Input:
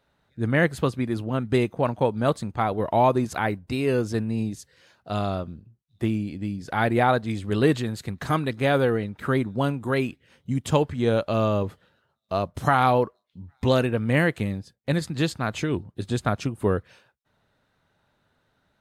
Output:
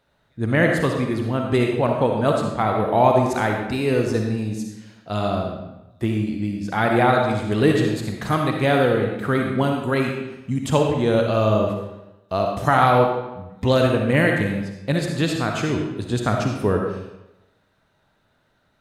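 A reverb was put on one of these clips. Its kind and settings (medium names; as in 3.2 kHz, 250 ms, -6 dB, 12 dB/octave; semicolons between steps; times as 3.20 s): algorithmic reverb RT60 0.94 s, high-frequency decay 0.85×, pre-delay 20 ms, DRR 1.5 dB; trim +2 dB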